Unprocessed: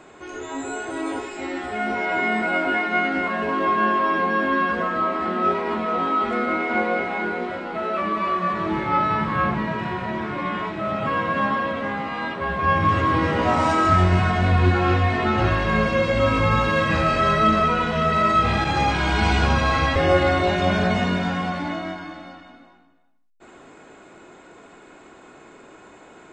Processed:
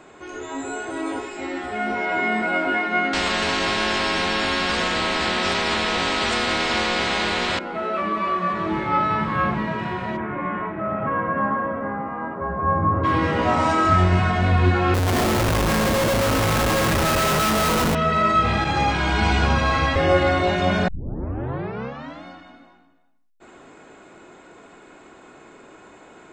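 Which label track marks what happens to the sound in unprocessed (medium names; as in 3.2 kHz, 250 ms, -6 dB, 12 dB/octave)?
3.130000	7.590000	spectrum-flattening compressor 4:1
10.160000	13.030000	low-pass 2.3 kHz -> 1.2 kHz 24 dB/octave
14.940000	17.950000	Schmitt trigger flips at -24.5 dBFS
20.880000	20.880000	tape start 1.36 s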